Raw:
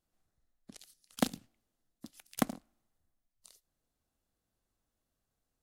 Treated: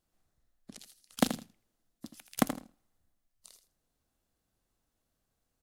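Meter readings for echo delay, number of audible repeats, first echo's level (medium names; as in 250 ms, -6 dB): 81 ms, 2, -10.5 dB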